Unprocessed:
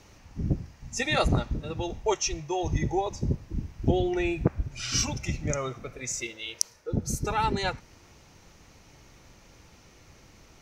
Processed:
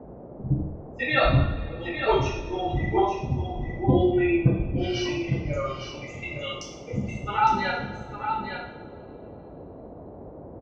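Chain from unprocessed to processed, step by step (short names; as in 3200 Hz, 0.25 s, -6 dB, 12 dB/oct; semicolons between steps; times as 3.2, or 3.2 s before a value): per-bin expansion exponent 2; LPF 3500 Hz 24 dB/oct; gate -52 dBFS, range -17 dB; two-slope reverb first 0.69 s, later 2.8 s, from -19 dB, DRR -7.5 dB; band noise 42–640 Hz -43 dBFS; on a send: echo 0.858 s -7.5 dB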